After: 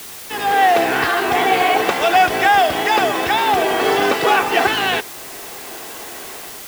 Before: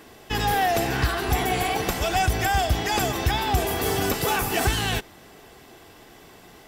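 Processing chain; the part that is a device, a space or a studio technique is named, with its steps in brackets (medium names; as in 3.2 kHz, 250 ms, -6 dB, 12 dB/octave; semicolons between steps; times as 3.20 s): dictaphone (band-pass 370–3100 Hz; level rider gain up to 15 dB; wow and flutter; white noise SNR 17 dB)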